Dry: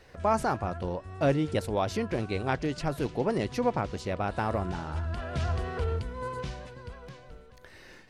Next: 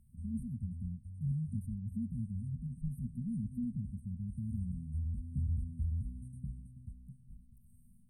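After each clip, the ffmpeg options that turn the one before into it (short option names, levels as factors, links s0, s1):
-filter_complex "[0:a]acrossover=split=3100[s0][s1];[s1]acompressor=threshold=0.00158:ratio=4:attack=1:release=60[s2];[s0][s2]amix=inputs=2:normalize=0,afftfilt=real='re*(1-between(b*sr/4096,250,8100))':imag='im*(1-between(b*sr/4096,250,8100))':win_size=4096:overlap=0.75,volume=0.668"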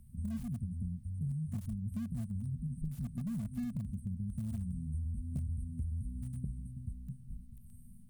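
-filter_complex "[0:a]acrossover=split=430[s0][s1];[s0]acompressor=threshold=0.00708:ratio=6[s2];[s1]aeval=exprs='(mod(1190*val(0)+1,2)-1)/1190':c=same[s3];[s2][s3]amix=inputs=2:normalize=0,volume=2.51"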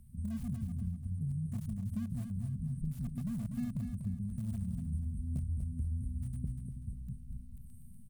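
-af "aecho=1:1:243|486|729|972:0.447|0.161|0.0579|0.0208"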